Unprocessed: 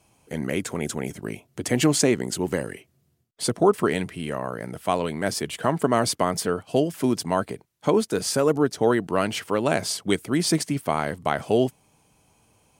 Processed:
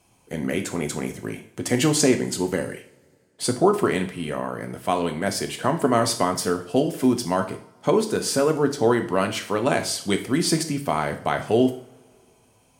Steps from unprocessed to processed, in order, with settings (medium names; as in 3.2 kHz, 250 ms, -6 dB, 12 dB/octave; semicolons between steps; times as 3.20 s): two-slope reverb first 0.47 s, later 2.3 s, from -25 dB, DRR 5.5 dB